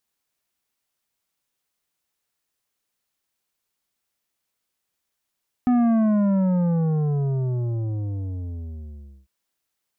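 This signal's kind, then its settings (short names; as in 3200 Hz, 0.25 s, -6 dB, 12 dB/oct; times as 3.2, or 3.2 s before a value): sub drop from 250 Hz, over 3.60 s, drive 9.5 dB, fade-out 3.57 s, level -16.5 dB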